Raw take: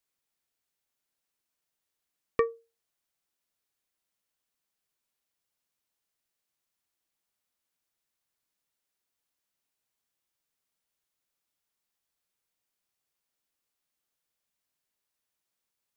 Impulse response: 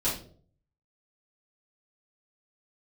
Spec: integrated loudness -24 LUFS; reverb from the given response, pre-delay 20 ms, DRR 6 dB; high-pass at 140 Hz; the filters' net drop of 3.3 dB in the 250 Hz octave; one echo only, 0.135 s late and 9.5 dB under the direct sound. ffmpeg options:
-filter_complex "[0:a]highpass=140,equalizer=f=250:t=o:g=-4.5,aecho=1:1:135:0.335,asplit=2[a][b];[1:a]atrim=start_sample=2205,adelay=20[c];[b][c]afir=irnorm=-1:irlink=0,volume=-14.5dB[d];[a][d]amix=inputs=2:normalize=0,volume=8dB"

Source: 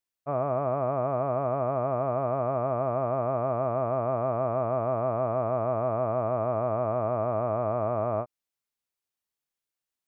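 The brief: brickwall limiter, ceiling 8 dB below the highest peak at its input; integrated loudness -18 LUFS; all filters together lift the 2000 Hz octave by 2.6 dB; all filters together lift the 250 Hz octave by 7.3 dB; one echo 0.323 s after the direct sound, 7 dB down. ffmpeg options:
-af "equalizer=f=250:t=o:g=8.5,equalizer=f=2k:t=o:g=3.5,alimiter=limit=-21.5dB:level=0:latency=1,aecho=1:1:323:0.447,volume=14dB"

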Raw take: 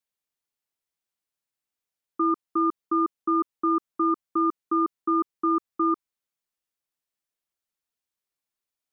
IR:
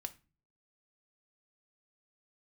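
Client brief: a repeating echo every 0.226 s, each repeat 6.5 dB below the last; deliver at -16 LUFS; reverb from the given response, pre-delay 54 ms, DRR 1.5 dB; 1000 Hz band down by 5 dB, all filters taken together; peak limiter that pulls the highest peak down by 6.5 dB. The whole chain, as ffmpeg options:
-filter_complex "[0:a]equalizer=f=1k:t=o:g=-6.5,alimiter=level_in=0.5dB:limit=-24dB:level=0:latency=1,volume=-0.5dB,aecho=1:1:226|452|678|904|1130|1356:0.473|0.222|0.105|0.0491|0.0231|0.0109,asplit=2[a][b];[1:a]atrim=start_sample=2205,adelay=54[c];[b][c]afir=irnorm=-1:irlink=0,volume=1.5dB[d];[a][d]amix=inputs=2:normalize=0,volume=14dB"

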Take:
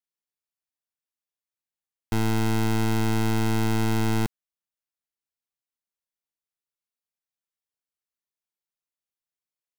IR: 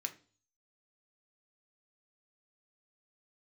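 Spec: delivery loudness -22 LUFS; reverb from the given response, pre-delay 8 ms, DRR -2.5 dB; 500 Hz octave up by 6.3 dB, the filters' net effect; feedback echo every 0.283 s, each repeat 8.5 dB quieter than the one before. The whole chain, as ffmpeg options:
-filter_complex "[0:a]equalizer=f=500:t=o:g=8.5,aecho=1:1:283|566|849|1132:0.376|0.143|0.0543|0.0206,asplit=2[a][b];[1:a]atrim=start_sample=2205,adelay=8[c];[b][c]afir=irnorm=-1:irlink=0,volume=3dB[d];[a][d]amix=inputs=2:normalize=0,volume=2dB"

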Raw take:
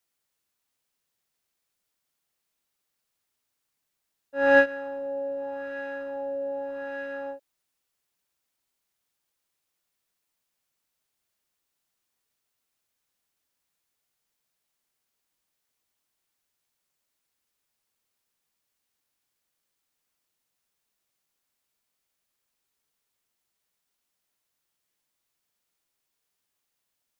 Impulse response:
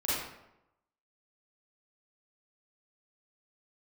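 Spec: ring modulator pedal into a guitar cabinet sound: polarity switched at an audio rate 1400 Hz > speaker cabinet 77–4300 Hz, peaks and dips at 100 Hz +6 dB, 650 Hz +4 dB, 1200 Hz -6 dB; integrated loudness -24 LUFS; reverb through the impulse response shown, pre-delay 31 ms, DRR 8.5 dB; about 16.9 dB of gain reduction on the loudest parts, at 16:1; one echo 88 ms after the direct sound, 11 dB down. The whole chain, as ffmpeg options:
-filter_complex "[0:a]acompressor=threshold=-29dB:ratio=16,aecho=1:1:88:0.282,asplit=2[a][b];[1:a]atrim=start_sample=2205,adelay=31[c];[b][c]afir=irnorm=-1:irlink=0,volume=-16.5dB[d];[a][d]amix=inputs=2:normalize=0,aeval=exprs='val(0)*sgn(sin(2*PI*1400*n/s))':c=same,highpass=77,equalizer=f=100:t=q:w=4:g=6,equalizer=f=650:t=q:w=4:g=4,equalizer=f=1.2k:t=q:w=4:g=-6,lowpass=f=4.3k:w=0.5412,lowpass=f=4.3k:w=1.3066,volume=6.5dB"

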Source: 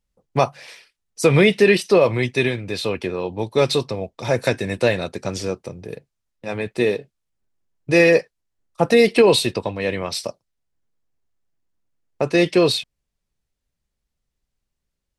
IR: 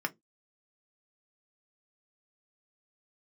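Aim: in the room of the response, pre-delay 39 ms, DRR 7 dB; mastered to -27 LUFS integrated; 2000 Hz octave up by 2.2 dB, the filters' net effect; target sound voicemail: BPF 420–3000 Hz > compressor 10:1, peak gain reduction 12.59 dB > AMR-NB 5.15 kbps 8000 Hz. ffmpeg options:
-filter_complex "[0:a]equalizer=f=2k:t=o:g=4,asplit=2[a][b];[1:a]atrim=start_sample=2205,adelay=39[c];[b][c]afir=irnorm=-1:irlink=0,volume=-12.5dB[d];[a][d]amix=inputs=2:normalize=0,highpass=420,lowpass=3k,acompressor=threshold=-22dB:ratio=10,volume=3.5dB" -ar 8000 -c:a libopencore_amrnb -b:a 5150

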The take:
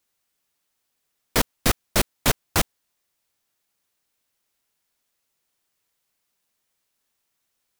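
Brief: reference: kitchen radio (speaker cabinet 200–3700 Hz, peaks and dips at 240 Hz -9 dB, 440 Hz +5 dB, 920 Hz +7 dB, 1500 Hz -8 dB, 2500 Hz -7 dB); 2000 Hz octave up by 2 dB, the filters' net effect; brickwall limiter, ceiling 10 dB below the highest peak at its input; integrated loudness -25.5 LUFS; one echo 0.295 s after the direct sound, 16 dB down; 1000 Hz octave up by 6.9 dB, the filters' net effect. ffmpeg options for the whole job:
-af "equalizer=f=1k:t=o:g=3.5,equalizer=f=2k:t=o:g=7,alimiter=limit=-12dB:level=0:latency=1,highpass=200,equalizer=f=240:t=q:w=4:g=-9,equalizer=f=440:t=q:w=4:g=5,equalizer=f=920:t=q:w=4:g=7,equalizer=f=1.5k:t=q:w=4:g=-8,equalizer=f=2.5k:t=q:w=4:g=-7,lowpass=f=3.7k:w=0.5412,lowpass=f=3.7k:w=1.3066,aecho=1:1:295:0.158,volume=5.5dB"

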